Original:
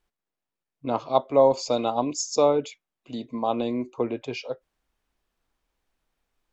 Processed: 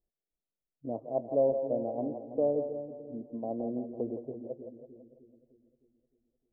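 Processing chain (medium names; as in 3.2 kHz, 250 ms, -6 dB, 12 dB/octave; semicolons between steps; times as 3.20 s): elliptic low-pass 660 Hz, stop band 70 dB; two-band feedback delay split 370 Hz, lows 306 ms, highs 166 ms, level -7.5 dB; trim -7.5 dB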